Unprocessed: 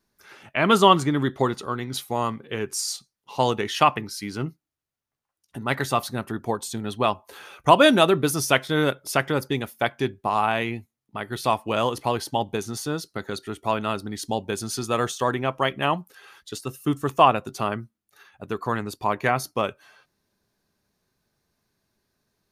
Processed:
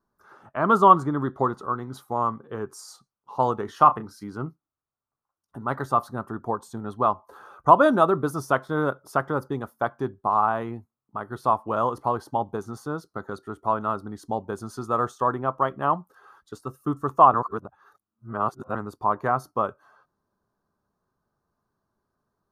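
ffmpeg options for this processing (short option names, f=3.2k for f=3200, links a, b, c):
-filter_complex "[0:a]asettb=1/sr,asplit=3[a][b][c];[a]atrim=end=3.654[d];[b]atrim=start=3.65:end=4.24,asetpts=PTS-STARTPTS,afade=t=in:d=0.004:c=qsin,afade=t=out:st=0.586:d=0.004:c=qsin,asplit=2[e][f];[f]adelay=32,volume=-11dB[g];[e][g]amix=inputs=2:normalize=0,atrim=end_sample=26019[h];[c]atrim=start=4.236[i];[d][h]acrossfade=d=0.004:c1=hsin:c2=qsin[j];[j][i]acrossfade=d=0.004:c1=qsin:c2=hsin,asplit=3[k][l][m];[k]atrim=end=17.342[n];[l]atrim=start=17.338:end=18.752,asetpts=PTS-STARTPTS,areverse[o];[m]atrim=start=18.748[p];[n][o]acrossfade=d=0.004:c1=hsin:c2=hsin[q];[q][p]acrossfade=d=0.004:c1=hsin:c2=hsin,highshelf=f=1.7k:t=q:w=3:g=-11.5,volume=-3.5dB"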